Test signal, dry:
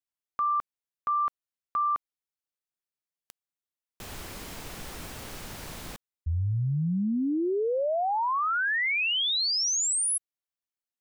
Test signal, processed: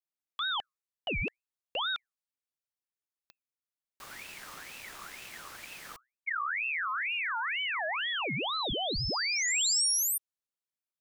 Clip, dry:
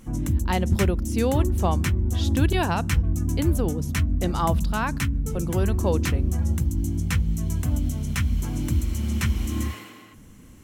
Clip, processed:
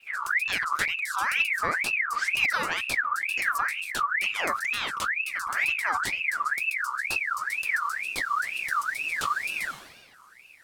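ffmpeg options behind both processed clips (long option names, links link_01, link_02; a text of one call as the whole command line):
ffmpeg -i in.wav -af "afreqshift=-65,adynamicequalizer=threshold=0.00501:dfrequency=6700:dqfactor=0.91:tfrequency=6700:tqfactor=0.91:attack=5:release=100:ratio=0.375:range=3:mode=boostabove:tftype=bell,aeval=exprs='val(0)*sin(2*PI*1900*n/s+1900*0.4/2.1*sin(2*PI*2.1*n/s))':channel_layout=same,volume=-3dB" out.wav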